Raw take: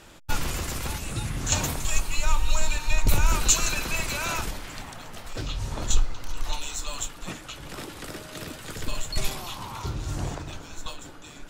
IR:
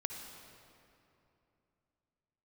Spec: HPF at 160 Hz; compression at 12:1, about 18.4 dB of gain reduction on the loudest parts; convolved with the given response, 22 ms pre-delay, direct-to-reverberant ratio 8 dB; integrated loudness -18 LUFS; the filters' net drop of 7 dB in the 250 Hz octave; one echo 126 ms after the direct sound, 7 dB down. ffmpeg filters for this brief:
-filter_complex "[0:a]highpass=160,equalizer=f=250:t=o:g=-8.5,acompressor=threshold=0.02:ratio=12,aecho=1:1:126:0.447,asplit=2[s0][s1];[1:a]atrim=start_sample=2205,adelay=22[s2];[s1][s2]afir=irnorm=-1:irlink=0,volume=0.376[s3];[s0][s3]amix=inputs=2:normalize=0,volume=8.41"

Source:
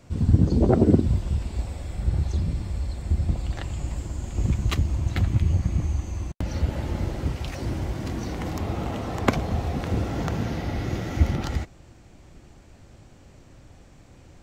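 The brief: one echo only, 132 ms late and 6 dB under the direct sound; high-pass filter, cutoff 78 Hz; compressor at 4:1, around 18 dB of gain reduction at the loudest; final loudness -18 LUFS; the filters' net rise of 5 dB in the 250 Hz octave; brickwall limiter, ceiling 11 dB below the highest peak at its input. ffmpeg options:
-af "highpass=78,equalizer=f=250:t=o:g=6.5,acompressor=threshold=0.0316:ratio=4,alimiter=level_in=1.19:limit=0.0631:level=0:latency=1,volume=0.841,aecho=1:1:132:0.501,volume=6.68"

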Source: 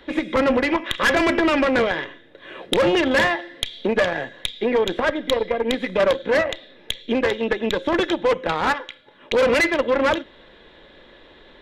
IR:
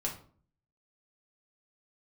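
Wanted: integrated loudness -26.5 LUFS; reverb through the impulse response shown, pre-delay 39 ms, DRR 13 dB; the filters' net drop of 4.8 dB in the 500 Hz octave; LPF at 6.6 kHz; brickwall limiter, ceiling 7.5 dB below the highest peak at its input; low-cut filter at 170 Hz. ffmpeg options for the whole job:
-filter_complex "[0:a]highpass=170,lowpass=6600,equalizer=f=500:t=o:g=-5.5,alimiter=limit=0.2:level=0:latency=1,asplit=2[s0][s1];[1:a]atrim=start_sample=2205,adelay=39[s2];[s1][s2]afir=irnorm=-1:irlink=0,volume=0.158[s3];[s0][s3]amix=inputs=2:normalize=0,volume=0.794"

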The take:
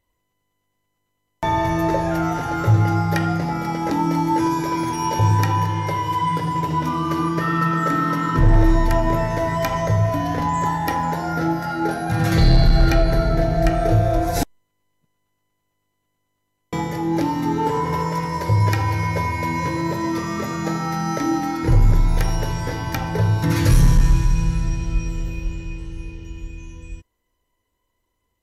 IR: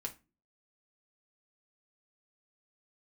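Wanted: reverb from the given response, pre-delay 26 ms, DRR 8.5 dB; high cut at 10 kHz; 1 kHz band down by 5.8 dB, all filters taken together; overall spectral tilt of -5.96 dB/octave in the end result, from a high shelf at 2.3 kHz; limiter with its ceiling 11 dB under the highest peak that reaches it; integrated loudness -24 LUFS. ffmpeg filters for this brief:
-filter_complex "[0:a]lowpass=10000,equalizer=f=1000:t=o:g=-5.5,highshelf=f=2300:g=-8,alimiter=limit=0.119:level=0:latency=1,asplit=2[s0][s1];[1:a]atrim=start_sample=2205,adelay=26[s2];[s1][s2]afir=irnorm=-1:irlink=0,volume=0.422[s3];[s0][s3]amix=inputs=2:normalize=0,volume=1.5"

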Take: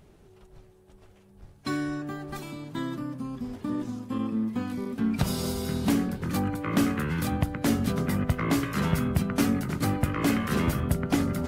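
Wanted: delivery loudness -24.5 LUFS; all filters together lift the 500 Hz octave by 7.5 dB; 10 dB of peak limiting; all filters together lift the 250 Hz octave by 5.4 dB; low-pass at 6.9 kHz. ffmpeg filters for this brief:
-af "lowpass=6900,equalizer=f=250:t=o:g=4.5,equalizer=f=500:t=o:g=8,volume=1.19,alimiter=limit=0.188:level=0:latency=1"

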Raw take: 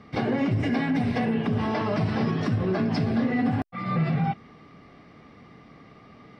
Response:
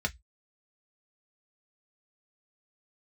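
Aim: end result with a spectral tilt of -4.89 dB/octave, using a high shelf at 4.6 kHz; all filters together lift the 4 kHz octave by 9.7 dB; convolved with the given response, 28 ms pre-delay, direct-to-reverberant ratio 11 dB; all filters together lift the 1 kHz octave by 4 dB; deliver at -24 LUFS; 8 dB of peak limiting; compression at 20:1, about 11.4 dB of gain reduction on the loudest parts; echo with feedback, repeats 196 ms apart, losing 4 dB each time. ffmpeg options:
-filter_complex "[0:a]equalizer=f=1000:t=o:g=4.5,equalizer=f=4000:t=o:g=8.5,highshelf=f=4600:g=8,acompressor=threshold=0.0282:ratio=20,alimiter=level_in=1.88:limit=0.0631:level=0:latency=1,volume=0.531,aecho=1:1:196|392|588|784|980|1176|1372|1568|1764:0.631|0.398|0.25|0.158|0.0994|0.0626|0.0394|0.0249|0.0157,asplit=2[s0][s1];[1:a]atrim=start_sample=2205,adelay=28[s2];[s1][s2]afir=irnorm=-1:irlink=0,volume=0.141[s3];[s0][s3]amix=inputs=2:normalize=0,volume=4.47"

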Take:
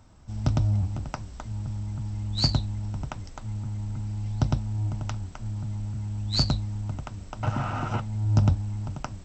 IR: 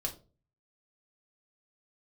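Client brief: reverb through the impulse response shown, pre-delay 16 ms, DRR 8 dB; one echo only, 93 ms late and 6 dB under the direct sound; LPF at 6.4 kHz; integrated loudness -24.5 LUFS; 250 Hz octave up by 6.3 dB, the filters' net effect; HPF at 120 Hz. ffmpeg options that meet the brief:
-filter_complex "[0:a]highpass=120,lowpass=6400,equalizer=f=250:t=o:g=9,aecho=1:1:93:0.501,asplit=2[s0][s1];[1:a]atrim=start_sample=2205,adelay=16[s2];[s1][s2]afir=irnorm=-1:irlink=0,volume=0.335[s3];[s0][s3]amix=inputs=2:normalize=0,volume=1.41"

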